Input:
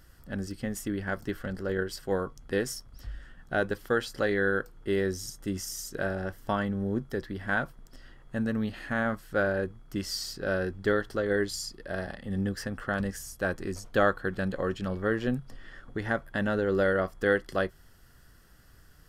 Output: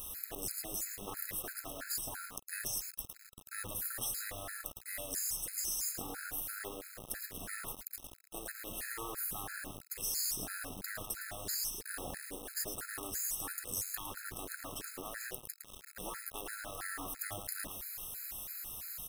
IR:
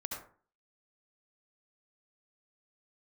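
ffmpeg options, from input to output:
-filter_complex "[0:a]equalizer=f=670:t=o:w=0.21:g=5.5,aexciter=amount=7.1:drive=3.6:freq=9500,highshelf=f=5000:t=q:w=1.5:g=12.5,asplit=2[s0][s1];[s1]acompressor=threshold=0.0316:ratio=12,volume=1[s2];[s0][s2]amix=inputs=2:normalize=0,afftfilt=real='re*lt(hypot(re,im),0.126)':imag='im*lt(hypot(re,im),0.126)':win_size=1024:overlap=0.75,aecho=1:1:109:0.422,acrusher=bits=5:mix=0:aa=0.000001,afftfilt=real='re*gt(sin(2*PI*3*pts/sr)*(1-2*mod(floor(b*sr/1024/1300),2)),0)':imag='im*gt(sin(2*PI*3*pts/sr)*(1-2*mod(floor(b*sr/1024/1300),2)),0)':win_size=1024:overlap=0.75,volume=0.447"

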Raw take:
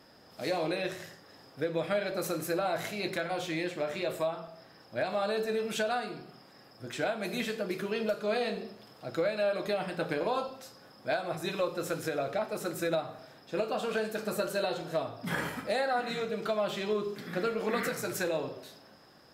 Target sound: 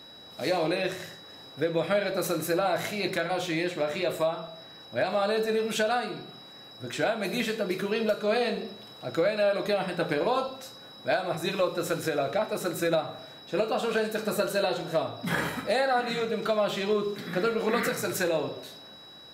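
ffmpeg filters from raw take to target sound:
-af "aeval=exprs='val(0)+0.00251*sin(2*PI*3900*n/s)':c=same,volume=1.68"

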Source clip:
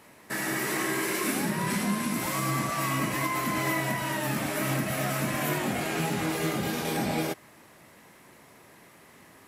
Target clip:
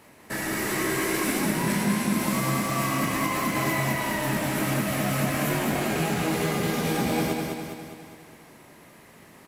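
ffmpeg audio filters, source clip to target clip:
-filter_complex "[0:a]asplit=2[s0][s1];[s1]acrusher=samples=24:mix=1:aa=0.000001,volume=0.299[s2];[s0][s2]amix=inputs=2:normalize=0,aecho=1:1:204|408|612|816|1020|1224|1428:0.631|0.341|0.184|0.0994|0.0537|0.029|0.0156"

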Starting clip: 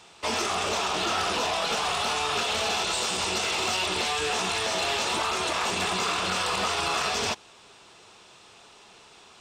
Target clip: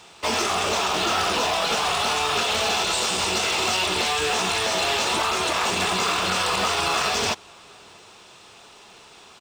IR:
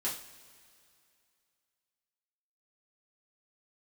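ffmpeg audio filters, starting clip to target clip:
-filter_complex "[0:a]asplit=2[s0][s1];[s1]acrusher=bits=3:mode=log:mix=0:aa=0.000001,volume=0.596[s2];[s0][s2]amix=inputs=2:normalize=0,asplit=2[s3][s4];[s4]adelay=641.4,volume=0.0398,highshelf=f=4000:g=-14.4[s5];[s3][s5]amix=inputs=2:normalize=0"

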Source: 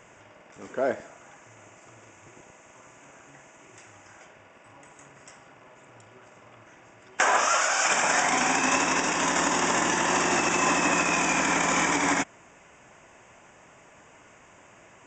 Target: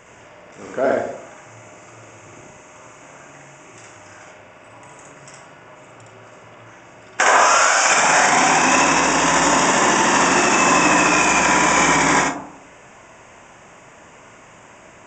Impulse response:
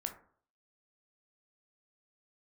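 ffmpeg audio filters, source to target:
-filter_complex "[0:a]asplit=2[s0][s1];[1:a]atrim=start_sample=2205,asetrate=30429,aresample=44100,adelay=62[s2];[s1][s2]afir=irnorm=-1:irlink=0,volume=0.891[s3];[s0][s3]amix=inputs=2:normalize=0,volume=1.88"

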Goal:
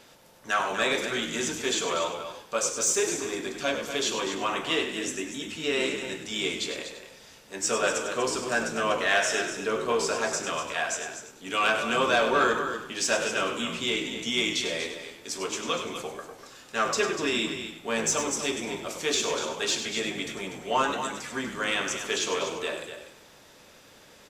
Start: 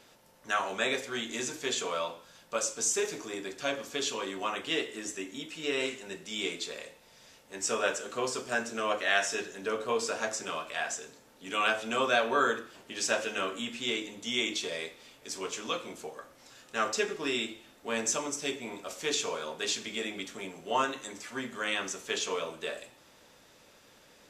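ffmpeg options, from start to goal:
-filter_complex "[0:a]asplit=2[s0][s1];[s1]aecho=0:1:243:0.316[s2];[s0][s2]amix=inputs=2:normalize=0,asoftclip=type=tanh:threshold=0.119,asplit=2[s3][s4];[s4]asplit=3[s5][s6][s7];[s5]adelay=99,afreqshift=-65,volume=0.355[s8];[s6]adelay=198,afreqshift=-130,volume=0.106[s9];[s7]adelay=297,afreqshift=-195,volume=0.032[s10];[s8][s9][s10]amix=inputs=3:normalize=0[s11];[s3][s11]amix=inputs=2:normalize=0,volume=1.68"

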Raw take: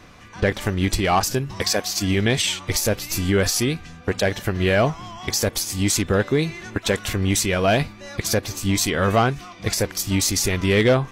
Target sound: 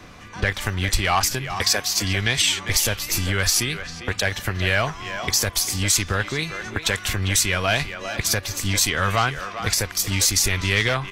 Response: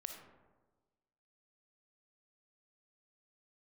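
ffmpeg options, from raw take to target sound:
-filter_complex "[0:a]acrossover=split=100|900[s0][s1][s2];[s1]acompressor=threshold=0.0224:ratio=6[s3];[s0][s3][s2]amix=inputs=3:normalize=0,asplit=2[s4][s5];[s5]adelay=400,highpass=300,lowpass=3400,asoftclip=type=hard:threshold=0.15,volume=0.355[s6];[s4][s6]amix=inputs=2:normalize=0,volume=1.41"

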